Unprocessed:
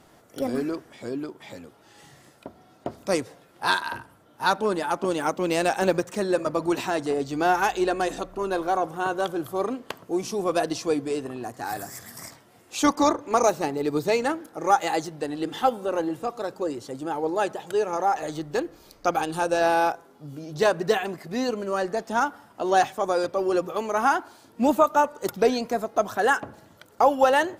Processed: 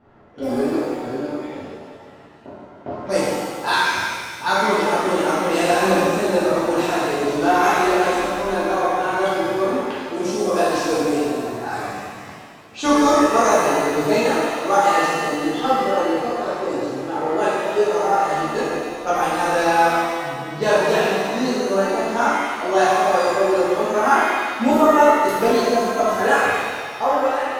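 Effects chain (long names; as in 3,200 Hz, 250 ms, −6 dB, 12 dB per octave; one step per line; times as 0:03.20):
fade-out on the ending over 0.86 s
low-pass that shuts in the quiet parts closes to 1,600 Hz, open at −22.5 dBFS
reverb with rising layers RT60 1.7 s, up +7 semitones, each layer −8 dB, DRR −10 dB
level −4.5 dB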